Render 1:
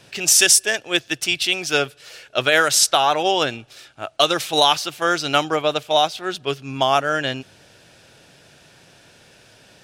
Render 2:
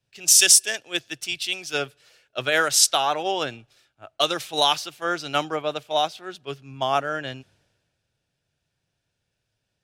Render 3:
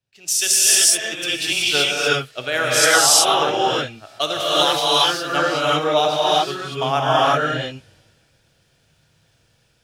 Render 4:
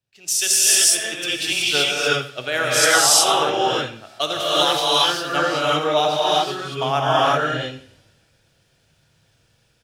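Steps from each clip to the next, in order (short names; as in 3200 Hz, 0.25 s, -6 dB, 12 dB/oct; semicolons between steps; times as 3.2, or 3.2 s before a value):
three-band expander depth 70%; gain -6.5 dB
AGC gain up to 15.5 dB; non-linear reverb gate 0.4 s rising, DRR -7 dB; gain -6 dB
feedback echo 88 ms, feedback 36%, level -14.5 dB; gain -1 dB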